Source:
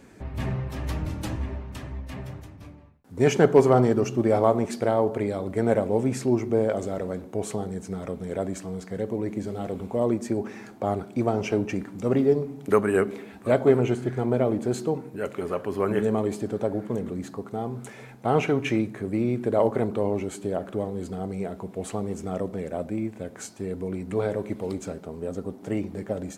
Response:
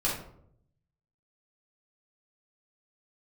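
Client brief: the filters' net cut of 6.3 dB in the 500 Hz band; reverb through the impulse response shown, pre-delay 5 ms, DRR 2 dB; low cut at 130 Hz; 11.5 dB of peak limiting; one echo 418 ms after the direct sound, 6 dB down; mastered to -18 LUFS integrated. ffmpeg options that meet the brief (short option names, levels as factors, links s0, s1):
-filter_complex "[0:a]highpass=130,equalizer=f=500:t=o:g=-8,alimiter=limit=0.106:level=0:latency=1,aecho=1:1:418:0.501,asplit=2[s0][s1];[1:a]atrim=start_sample=2205,adelay=5[s2];[s1][s2]afir=irnorm=-1:irlink=0,volume=0.299[s3];[s0][s3]amix=inputs=2:normalize=0,volume=3.55"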